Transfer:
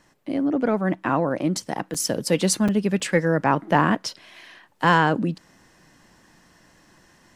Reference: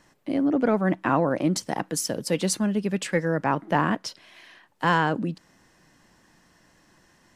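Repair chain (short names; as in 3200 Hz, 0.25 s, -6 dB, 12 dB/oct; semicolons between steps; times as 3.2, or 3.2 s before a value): interpolate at 1.94/2.68/3, 5.6 ms; gain correction -4 dB, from 2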